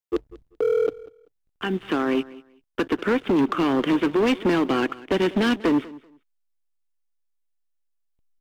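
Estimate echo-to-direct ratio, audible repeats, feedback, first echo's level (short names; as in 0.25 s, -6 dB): -20.0 dB, 2, 20%, -20.0 dB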